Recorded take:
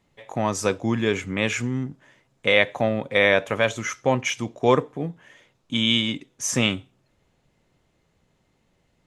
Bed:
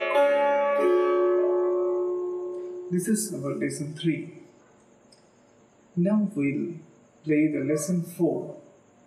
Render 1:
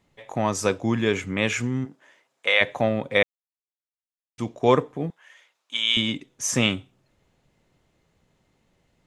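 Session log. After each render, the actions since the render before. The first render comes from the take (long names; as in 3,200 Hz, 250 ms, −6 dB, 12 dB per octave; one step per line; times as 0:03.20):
0:01.84–0:02.60: high-pass filter 290 Hz → 760 Hz
0:03.23–0:04.38: silence
0:05.10–0:05.97: high-pass filter 920 Hz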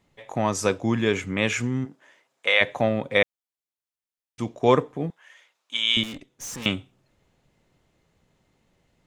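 0:06.03–0:06.66: tube saturation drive 33 dB, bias 0.7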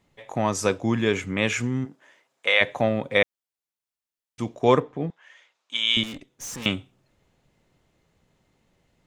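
0:04.79–0:06.05: low-pass filter 4,300 Hz → 11,000 Hz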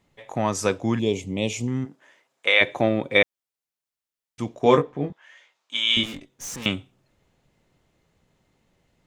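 0:00.99–0:01.68: Butterworth band-reject 1,500 Hz, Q 0.71
0:02.47–0:03.22: hollow resonant body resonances 340/2,300/3,600 Hz, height 10 dB
0:04.61–0:06.56: double-tracking delay 21 ms −5 dB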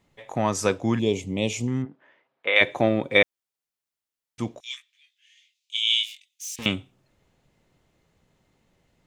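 0:01.82–0:02.56: high-frequency loss of the air 350 metres
0:04.60–0:06.59: Butterworth high-pass 2,500 Hz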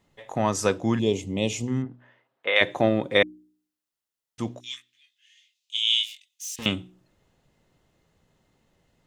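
notch filter 2,300 Hz, Q 12
hum removal 61.15 Hz, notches 6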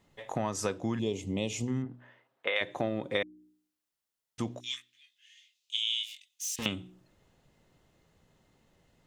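downward compressor 4 to 1, threshold −29 dBFS, peak gain reduction 13 dB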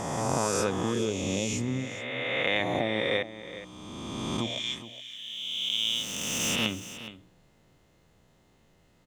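peak hold with a rise ahead of every peak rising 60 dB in 2.40 s
single-tap delay 418 ms −14 dB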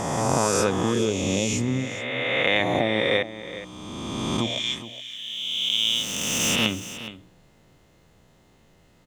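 level +5.5 dB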